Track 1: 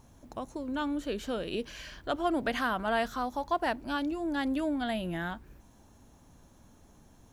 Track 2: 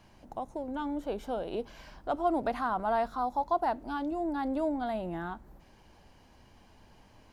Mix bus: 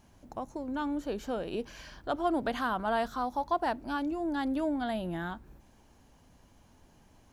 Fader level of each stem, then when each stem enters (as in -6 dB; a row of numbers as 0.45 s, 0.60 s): -4.5 dB, -6.5 dB; 0.00 s, 0.00 s